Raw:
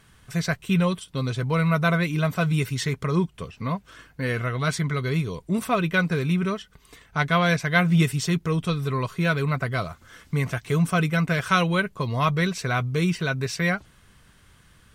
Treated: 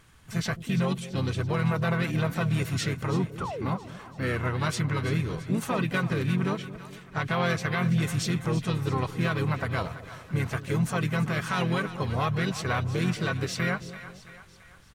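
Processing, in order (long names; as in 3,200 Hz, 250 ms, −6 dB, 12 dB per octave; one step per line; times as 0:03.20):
brickwall limiter −16 dBFS, peak gain reduction 9.5 dB
pitch-shifted copies added −5 semitones −5 dB, +4 semitones −12 dB
sound drawn into the spectrogram fall, 0:03.40–0:03.67, 250–1,500 Hz −31 dBFS
echo with a time of its own for lows and highs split 650 Hz, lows 217 ms, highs 335 ms, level −13.5 dB
level −3.5 dB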